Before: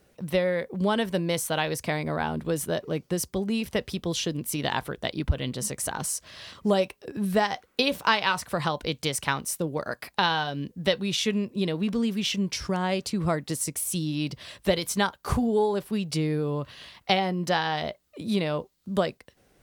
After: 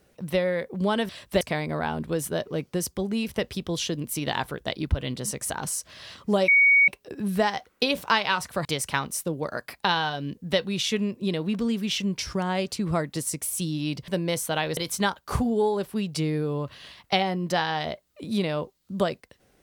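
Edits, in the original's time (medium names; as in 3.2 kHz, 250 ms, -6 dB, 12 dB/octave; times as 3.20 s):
1.09–1.78 s: swap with 14.42–14.74 s
6.85 s: add tone 2.24 kHz -14 dBFS 0.40 s
8.62–8.99 s: delete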